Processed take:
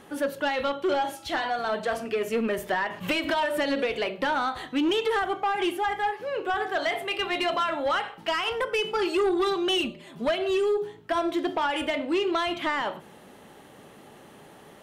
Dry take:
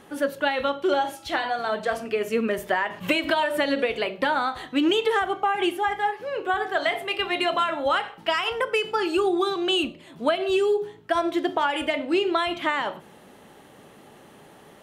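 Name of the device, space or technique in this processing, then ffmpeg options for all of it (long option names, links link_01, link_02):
saturation between pre-emphasis and de-emphasis: -filter_complex "[0:a]asettb=1/sr,asplit=3[link_01][link_02][link_03];[link_01]atrim=end=8.784[link_04];[link_02]atrim=start=8.78:end=10.39,asetpts=PTS-STARTPTS,afade=type=in:duration=0.004:curve=qsin,afade=type=out:start_time=1.606:duration=0.004:curve=qsin,aecho=1:1:5:0.51,atrim=end_sample=71001[link_05];[link_03]atrim=start=10.386[link_06];[link_04][link_05]acrossfade=duration=0.004:curve1=hsin:curve2=qsin[link_07];[link_07][link_06]acrossfade=duration=0.004:curve1=qsin:curve2=hsin,highshelf=frequency=5900:gain=11.5,asoftclip=type=tanh:threshold=-19dB,highshelf=frequency=5900:gain=-11.5"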